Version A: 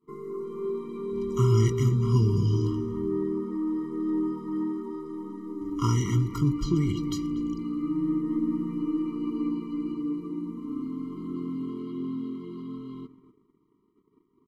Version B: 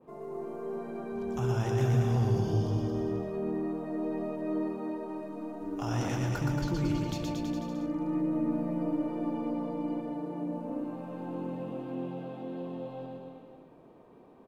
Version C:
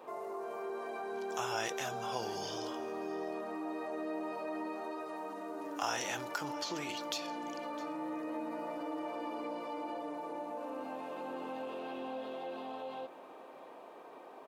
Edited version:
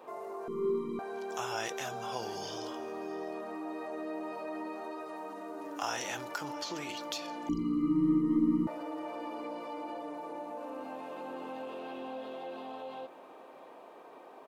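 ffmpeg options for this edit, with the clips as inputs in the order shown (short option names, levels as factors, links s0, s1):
-filter_complex "[0:a]asplit=2[s0][s1];[2:a]asplit=3[s2][s3][s4];[s2]atrim=end=0.482[s5];[s0]atrim=start=0.478:end=0.992[s6];[s3]atrim=start=0.988:end=7.492[s7];[s1]atrim=start=7.488:end=8.672[s8];[s4]atrim=start=8.668[s9];[s5][s6]acrossfade=d=0.004:c1=hsin:c2=hsin[s10];[s10][s7]acrossfade=d=0.004:c1=hsin:c2=hsin[s11];[s11][s8]acrossfade=d=0.004:c1=hsin:c2=hsin[s12];[s12][s9]acrossfade=d=0.004:c1=hsin:c2=hsin"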